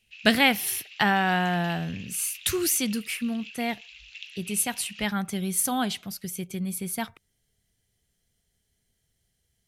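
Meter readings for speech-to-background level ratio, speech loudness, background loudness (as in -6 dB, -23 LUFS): 16.5 dB, -26.5 LUFS, -43.0 LUFS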